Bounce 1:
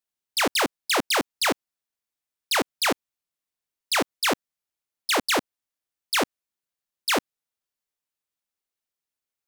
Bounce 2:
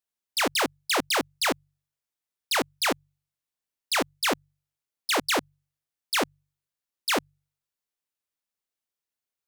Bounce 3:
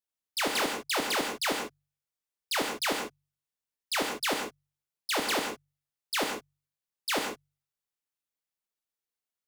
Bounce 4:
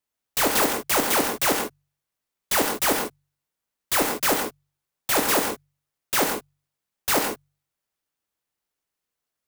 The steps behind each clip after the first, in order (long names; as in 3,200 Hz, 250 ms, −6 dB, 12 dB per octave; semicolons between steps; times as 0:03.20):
hum removal 47.89 Hz, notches 3; level −2 dB
reverb whose tail is shaped and stops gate 180 ms flat, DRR 2 dB; level −5.5 dB
converter with an unsteady clock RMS 0.079 ms; level +8 dB